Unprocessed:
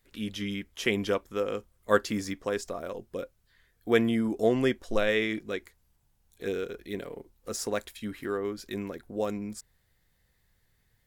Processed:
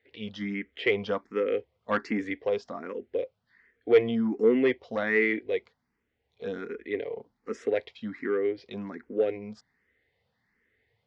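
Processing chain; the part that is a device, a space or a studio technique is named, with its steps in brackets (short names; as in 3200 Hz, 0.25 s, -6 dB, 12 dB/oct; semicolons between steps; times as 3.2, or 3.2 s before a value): barber-pole phaser into a guitar amplifier (endless phaser +1.3 Hz; soft clip -21 dBFS, distortion -15 dB; speaker cabinet 110–4300 Hz, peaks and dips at 150 Hz -5 dB, 250 Hz +6 dB, 450 Hz +9 dB, 760 Hz +3 dB, 2000 Hz +9 dB, 3900 Hz -4 dB); gain +1 dB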